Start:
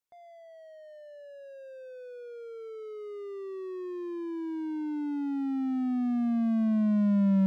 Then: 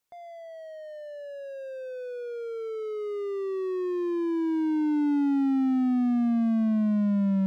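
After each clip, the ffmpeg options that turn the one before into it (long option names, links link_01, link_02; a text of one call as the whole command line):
ffmpeg -i in.wav -af "alimiter=level_in=3dB:limit=-24dB:level=0:latency=1,volume=-3dB,volume=8dB" out.wav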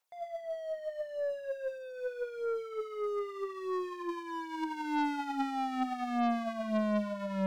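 ffmpeg -i in.wav -af "lowshelf=frequency=430:width_type=q:width=1.5:gain=-13,aphaser=in_gain=1:out_gain=1:delay=5:decay=0.48:speed=0.8:type=sinusoidal,aeval=exprs='0.0891*(cos(1*acos(clip(val(0)/0.0891,-1,1)))-cos(1*PI/2))+0.00224*(cos(2*acos(clip(val(0)/0.0891,-1,1)))-cos(2*PI/2))+0.00447*(cos(4*acos(clip(val(0)/0.0891,-1,1)))-cos(4*PI/2))+0.00141*(cos(6*acos(clip(val(0)/0.0891,-1,1)))-cos(6*PI/2))+0.00631*(cos(7*acos(clip(val(0)/0.0891,-1,1)))-cos(7*PI/2))':channel_layout=same,volume=3dB" out.wav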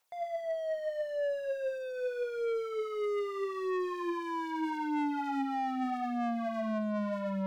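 ffmpeg -i in.wav -af "asoftclip=type=tanh:threshold=-34.5dB,volume=6dB" out.wav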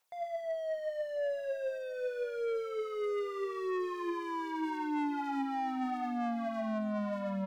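ffmpeg -i in.wav -af "aecho=1:1:1043:0.158,volume=-1.5dB" out.wav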